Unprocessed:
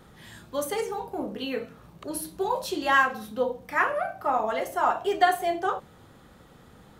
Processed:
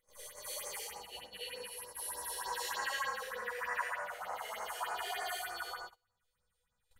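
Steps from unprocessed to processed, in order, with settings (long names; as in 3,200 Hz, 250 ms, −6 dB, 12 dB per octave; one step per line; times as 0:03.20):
peak hold with a rise ahead of every peak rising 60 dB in 2.61 s
guitar amp tone stack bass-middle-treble 10-0-10
pitch vibrato 4.2 Hz 13 cents
upward compression, threshold −33 dBFS
high-shelf EQ 5,100 Hz −3 dB
tuned comb filter 490 Hz, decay 0.47 s, mix 90%
four-comb reverb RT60 1.3 s, combs from 29 ms, DRR −6 dB
all-pass phaser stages 4, 3.3 Hz, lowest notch 160–3,400 Hz
noise gate −50 dBFS, range −29 dB
level +4 dB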